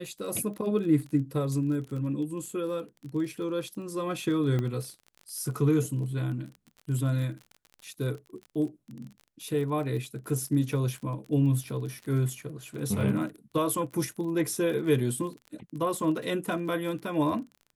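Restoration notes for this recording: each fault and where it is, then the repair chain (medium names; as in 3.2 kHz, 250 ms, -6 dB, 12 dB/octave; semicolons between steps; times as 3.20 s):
crackle 32 per s -37 dBFS
4.59 s: pop -19 dBFS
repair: de-click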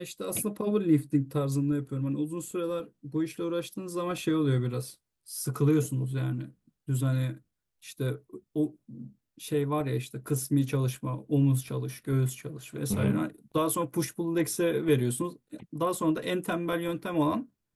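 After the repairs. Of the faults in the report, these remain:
nothing left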